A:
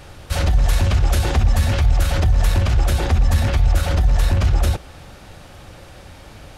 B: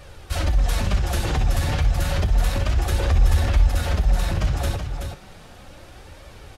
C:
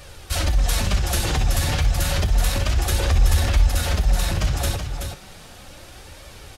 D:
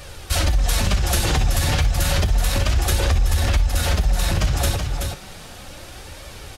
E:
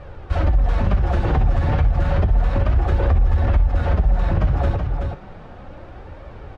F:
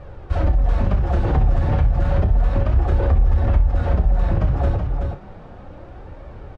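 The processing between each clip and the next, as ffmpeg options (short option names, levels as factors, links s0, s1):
-af "flanger=delay=1.6:depth=5.7:regen=41:speed=0.32:shape=triangular,aecho=1:1:62|377:0.266|0.473"
-af "highshelf=f=3000:g=9"
-af "acompressor=threshold=0.126:ratio=6,volume=1.58"
-af "lowpass=1200,volume=1.26"
-filter_complex "[0:a]equalizer=f=2700:t=o:w=2.9:g=-4.5,asplit=2[s0][s1];[s1]adelay=29,volume=0.282[s2];[s0][s2]amix=inputs=2:normalize=0,aresample=22050,aresample=44100"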